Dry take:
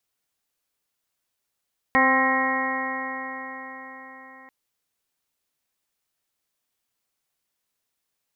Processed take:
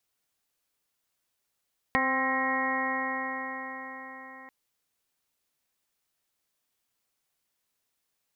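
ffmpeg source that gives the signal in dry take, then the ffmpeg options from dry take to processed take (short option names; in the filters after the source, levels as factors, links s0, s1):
-f lavfi -i "aevalsrc='0.0668*pow(10,-3*t/4.99)*sin(2*PI*261.16*t)+0.0531*pow(10,-3*t/4.99)*sin(2*PI*523.25*t)+0.075*pow(10,-3*t/4.99)*sin(2*PI*787.22*t)+0.0891*pow(10,-3*t/4.99)*sin(2*PI*1053.97*t)+0.0335*pow(10,-3*t/4.99)*sin(2*PI*1324.43*t)+0.015*pow(10,-3*t/4.99)*sin(2*PI*1599.47*t)+0.119*pow(10,-3*t/4.99)*sin(2*PI*1879.95*t)+0.0473*pow(10,-3*t/4.99)*sin(2*PI*2166.7*t)':d=2.54:s=44100"
-af "acompressor=threshold=0.0631:ratio=6"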